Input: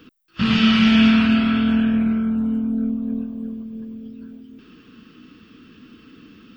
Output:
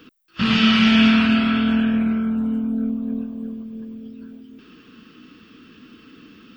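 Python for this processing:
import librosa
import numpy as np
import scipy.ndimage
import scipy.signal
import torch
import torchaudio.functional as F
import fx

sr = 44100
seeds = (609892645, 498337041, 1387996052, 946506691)

y = fx.low_shelf(x, sr, hz=210.0, db=-6.0)
y = y * 10.0 ** (2.0 / 20.0)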